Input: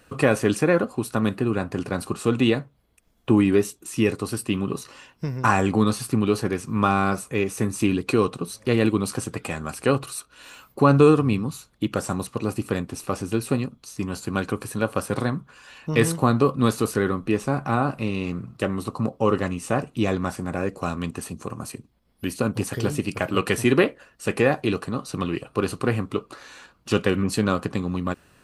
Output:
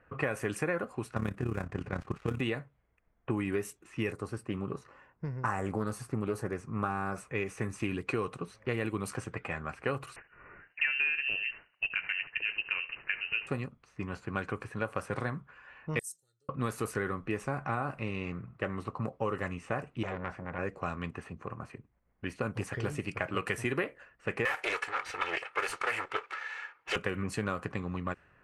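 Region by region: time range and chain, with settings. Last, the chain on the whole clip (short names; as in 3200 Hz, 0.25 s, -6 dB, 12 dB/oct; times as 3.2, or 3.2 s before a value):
1.14–2.41 switching dead time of 0.097 ms + low shelf 190 Hz +9.5 dB + AM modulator 34 Hz, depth 60%
4.12–7.16 bell 2700 Hz -9 dB 1.6 oct + Doppler distortion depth 0.21 ms
10.16–13.47 CVSD 64 kbps + echo 75 ms -17 dB + inverted band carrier 2900 Hz
15.99–16.49 inverse Chebyshev high-pass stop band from 2600 Hz, stop band 50 dB + comb 2.2 ms, depth 92%
20.03–20.59 high shelf 5900 Hz -10.5 dB + core saturation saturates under 1300 Hz
24.45–26.96 minimum comb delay 2.3 ms + tilt +4.5 dB/oct + overdrive pedal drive 16 dB, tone 2300 Hz, clips at -7.5 dBFS
whole clip: low-pass opened by the level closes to 1600 Hz, open at -17 dBFS; graphic EQ 250/2000/4000 Hz -6/+7/-9 dB; compressor 6:1, threshold -21 dBFS; gain -6.5 dB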